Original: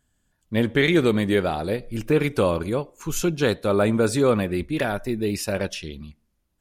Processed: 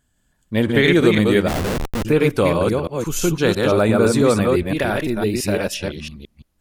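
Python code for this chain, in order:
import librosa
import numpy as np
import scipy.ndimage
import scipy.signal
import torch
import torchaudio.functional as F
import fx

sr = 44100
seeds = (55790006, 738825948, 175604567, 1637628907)

y = fx.reverse_delay(x, sr, ms=169, wet_db=-2.5)
y = fx.schmitt(y, sr, flips_db=-23.0, at=(1.48, 2.05))
y = y * 10.0 ** (3.0 / 20.0)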